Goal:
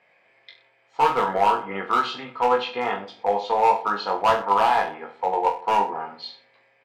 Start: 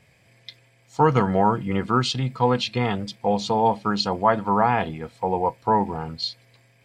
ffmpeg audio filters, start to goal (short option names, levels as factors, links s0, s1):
-filter_complex "[0:a]highpass=590,lowpass=2000,asplit=2[s0][s1];[s1]adelay=159,lowpass=f=960:p=1,volume=0.1,asplit=2[s2][s3];[s3]adelay=159,lowpass=f=960:p=1,volume=0.41,asplit=2[s4][s5];[s5]adelay=159,lowpass=f=960:p=1,volume=0.41[s6];[s2][s4][s6]amix=inputs=3:normalize=0[s7];[s0][s7]amix=inputs=2:normalize=0,asoftclip=type=hard:threshold=0.133,asplit=2[s8][s9];[s9]aecho=0:1:20|42|66.2|92.82|122.1:0.631|0.398|0.251|0.158|0.1[s10];[s8][s10]amix=inputs=2:normalize=0,volume=1.33"